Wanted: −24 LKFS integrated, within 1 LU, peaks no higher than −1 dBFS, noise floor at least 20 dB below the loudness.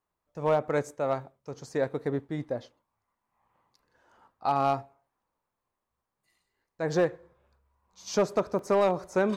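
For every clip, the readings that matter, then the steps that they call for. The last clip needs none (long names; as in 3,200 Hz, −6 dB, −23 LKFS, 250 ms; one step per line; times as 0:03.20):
share of clipped samples 0.3%; peaks flattened at −17.0 dBFS; number of dropouts 1; longest dropout 1.1 ms; integrated loudness −29.0 LKFS; sample peak −17.0 dBFS; target loudness −24.0 LKFS
→ clipped peaks rebuilt −17 dBFS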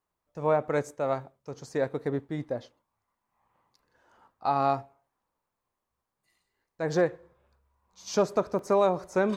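share of clipped samples 0.0%; number of dropouts 1; longest dropout 1.1 ms
→ repair the gap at 0:08.59, 1.1 ms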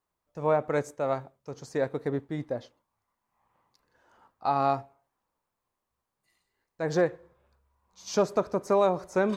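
number of dropouts 0; integrated loudness −29.0 LKFS; sample peak −12.5 dBFS; target loudness −24.0 LKFS
→ level +5 dB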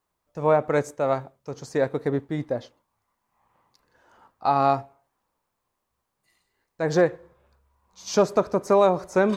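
integrated loudness −24.0 LKFS; sample peak −7.5 dBFS; background noise floor −80 dBFS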